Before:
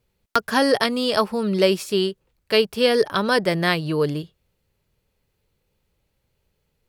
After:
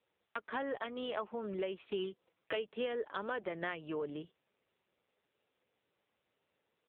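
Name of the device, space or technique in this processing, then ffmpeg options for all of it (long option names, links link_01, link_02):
voicemail: -filter_complex "[0:a]asplit=3[link_01][link_02][link_03];[link_01]afade=type=out:start_time=1.98:duration=0.02[link_04];[link_02]aecho=1:1:6.1:0.84,afade=type=in:start_time=1.98:duration=0.02,afade=type=out:start_time=2.55:duration=0.02[link_05];[link_03]afade=type=in:start_time=2.55:duration=0.02[link_06];[link_04][link_05][link_06]amix=inputs=3:normalize=0,highpass=310,lowpass=3200,acompressor=threshold=-32dB:ratio=8,volume=-2dB" -ar 8000 -c:a libopencore_amrnb -b:a 6700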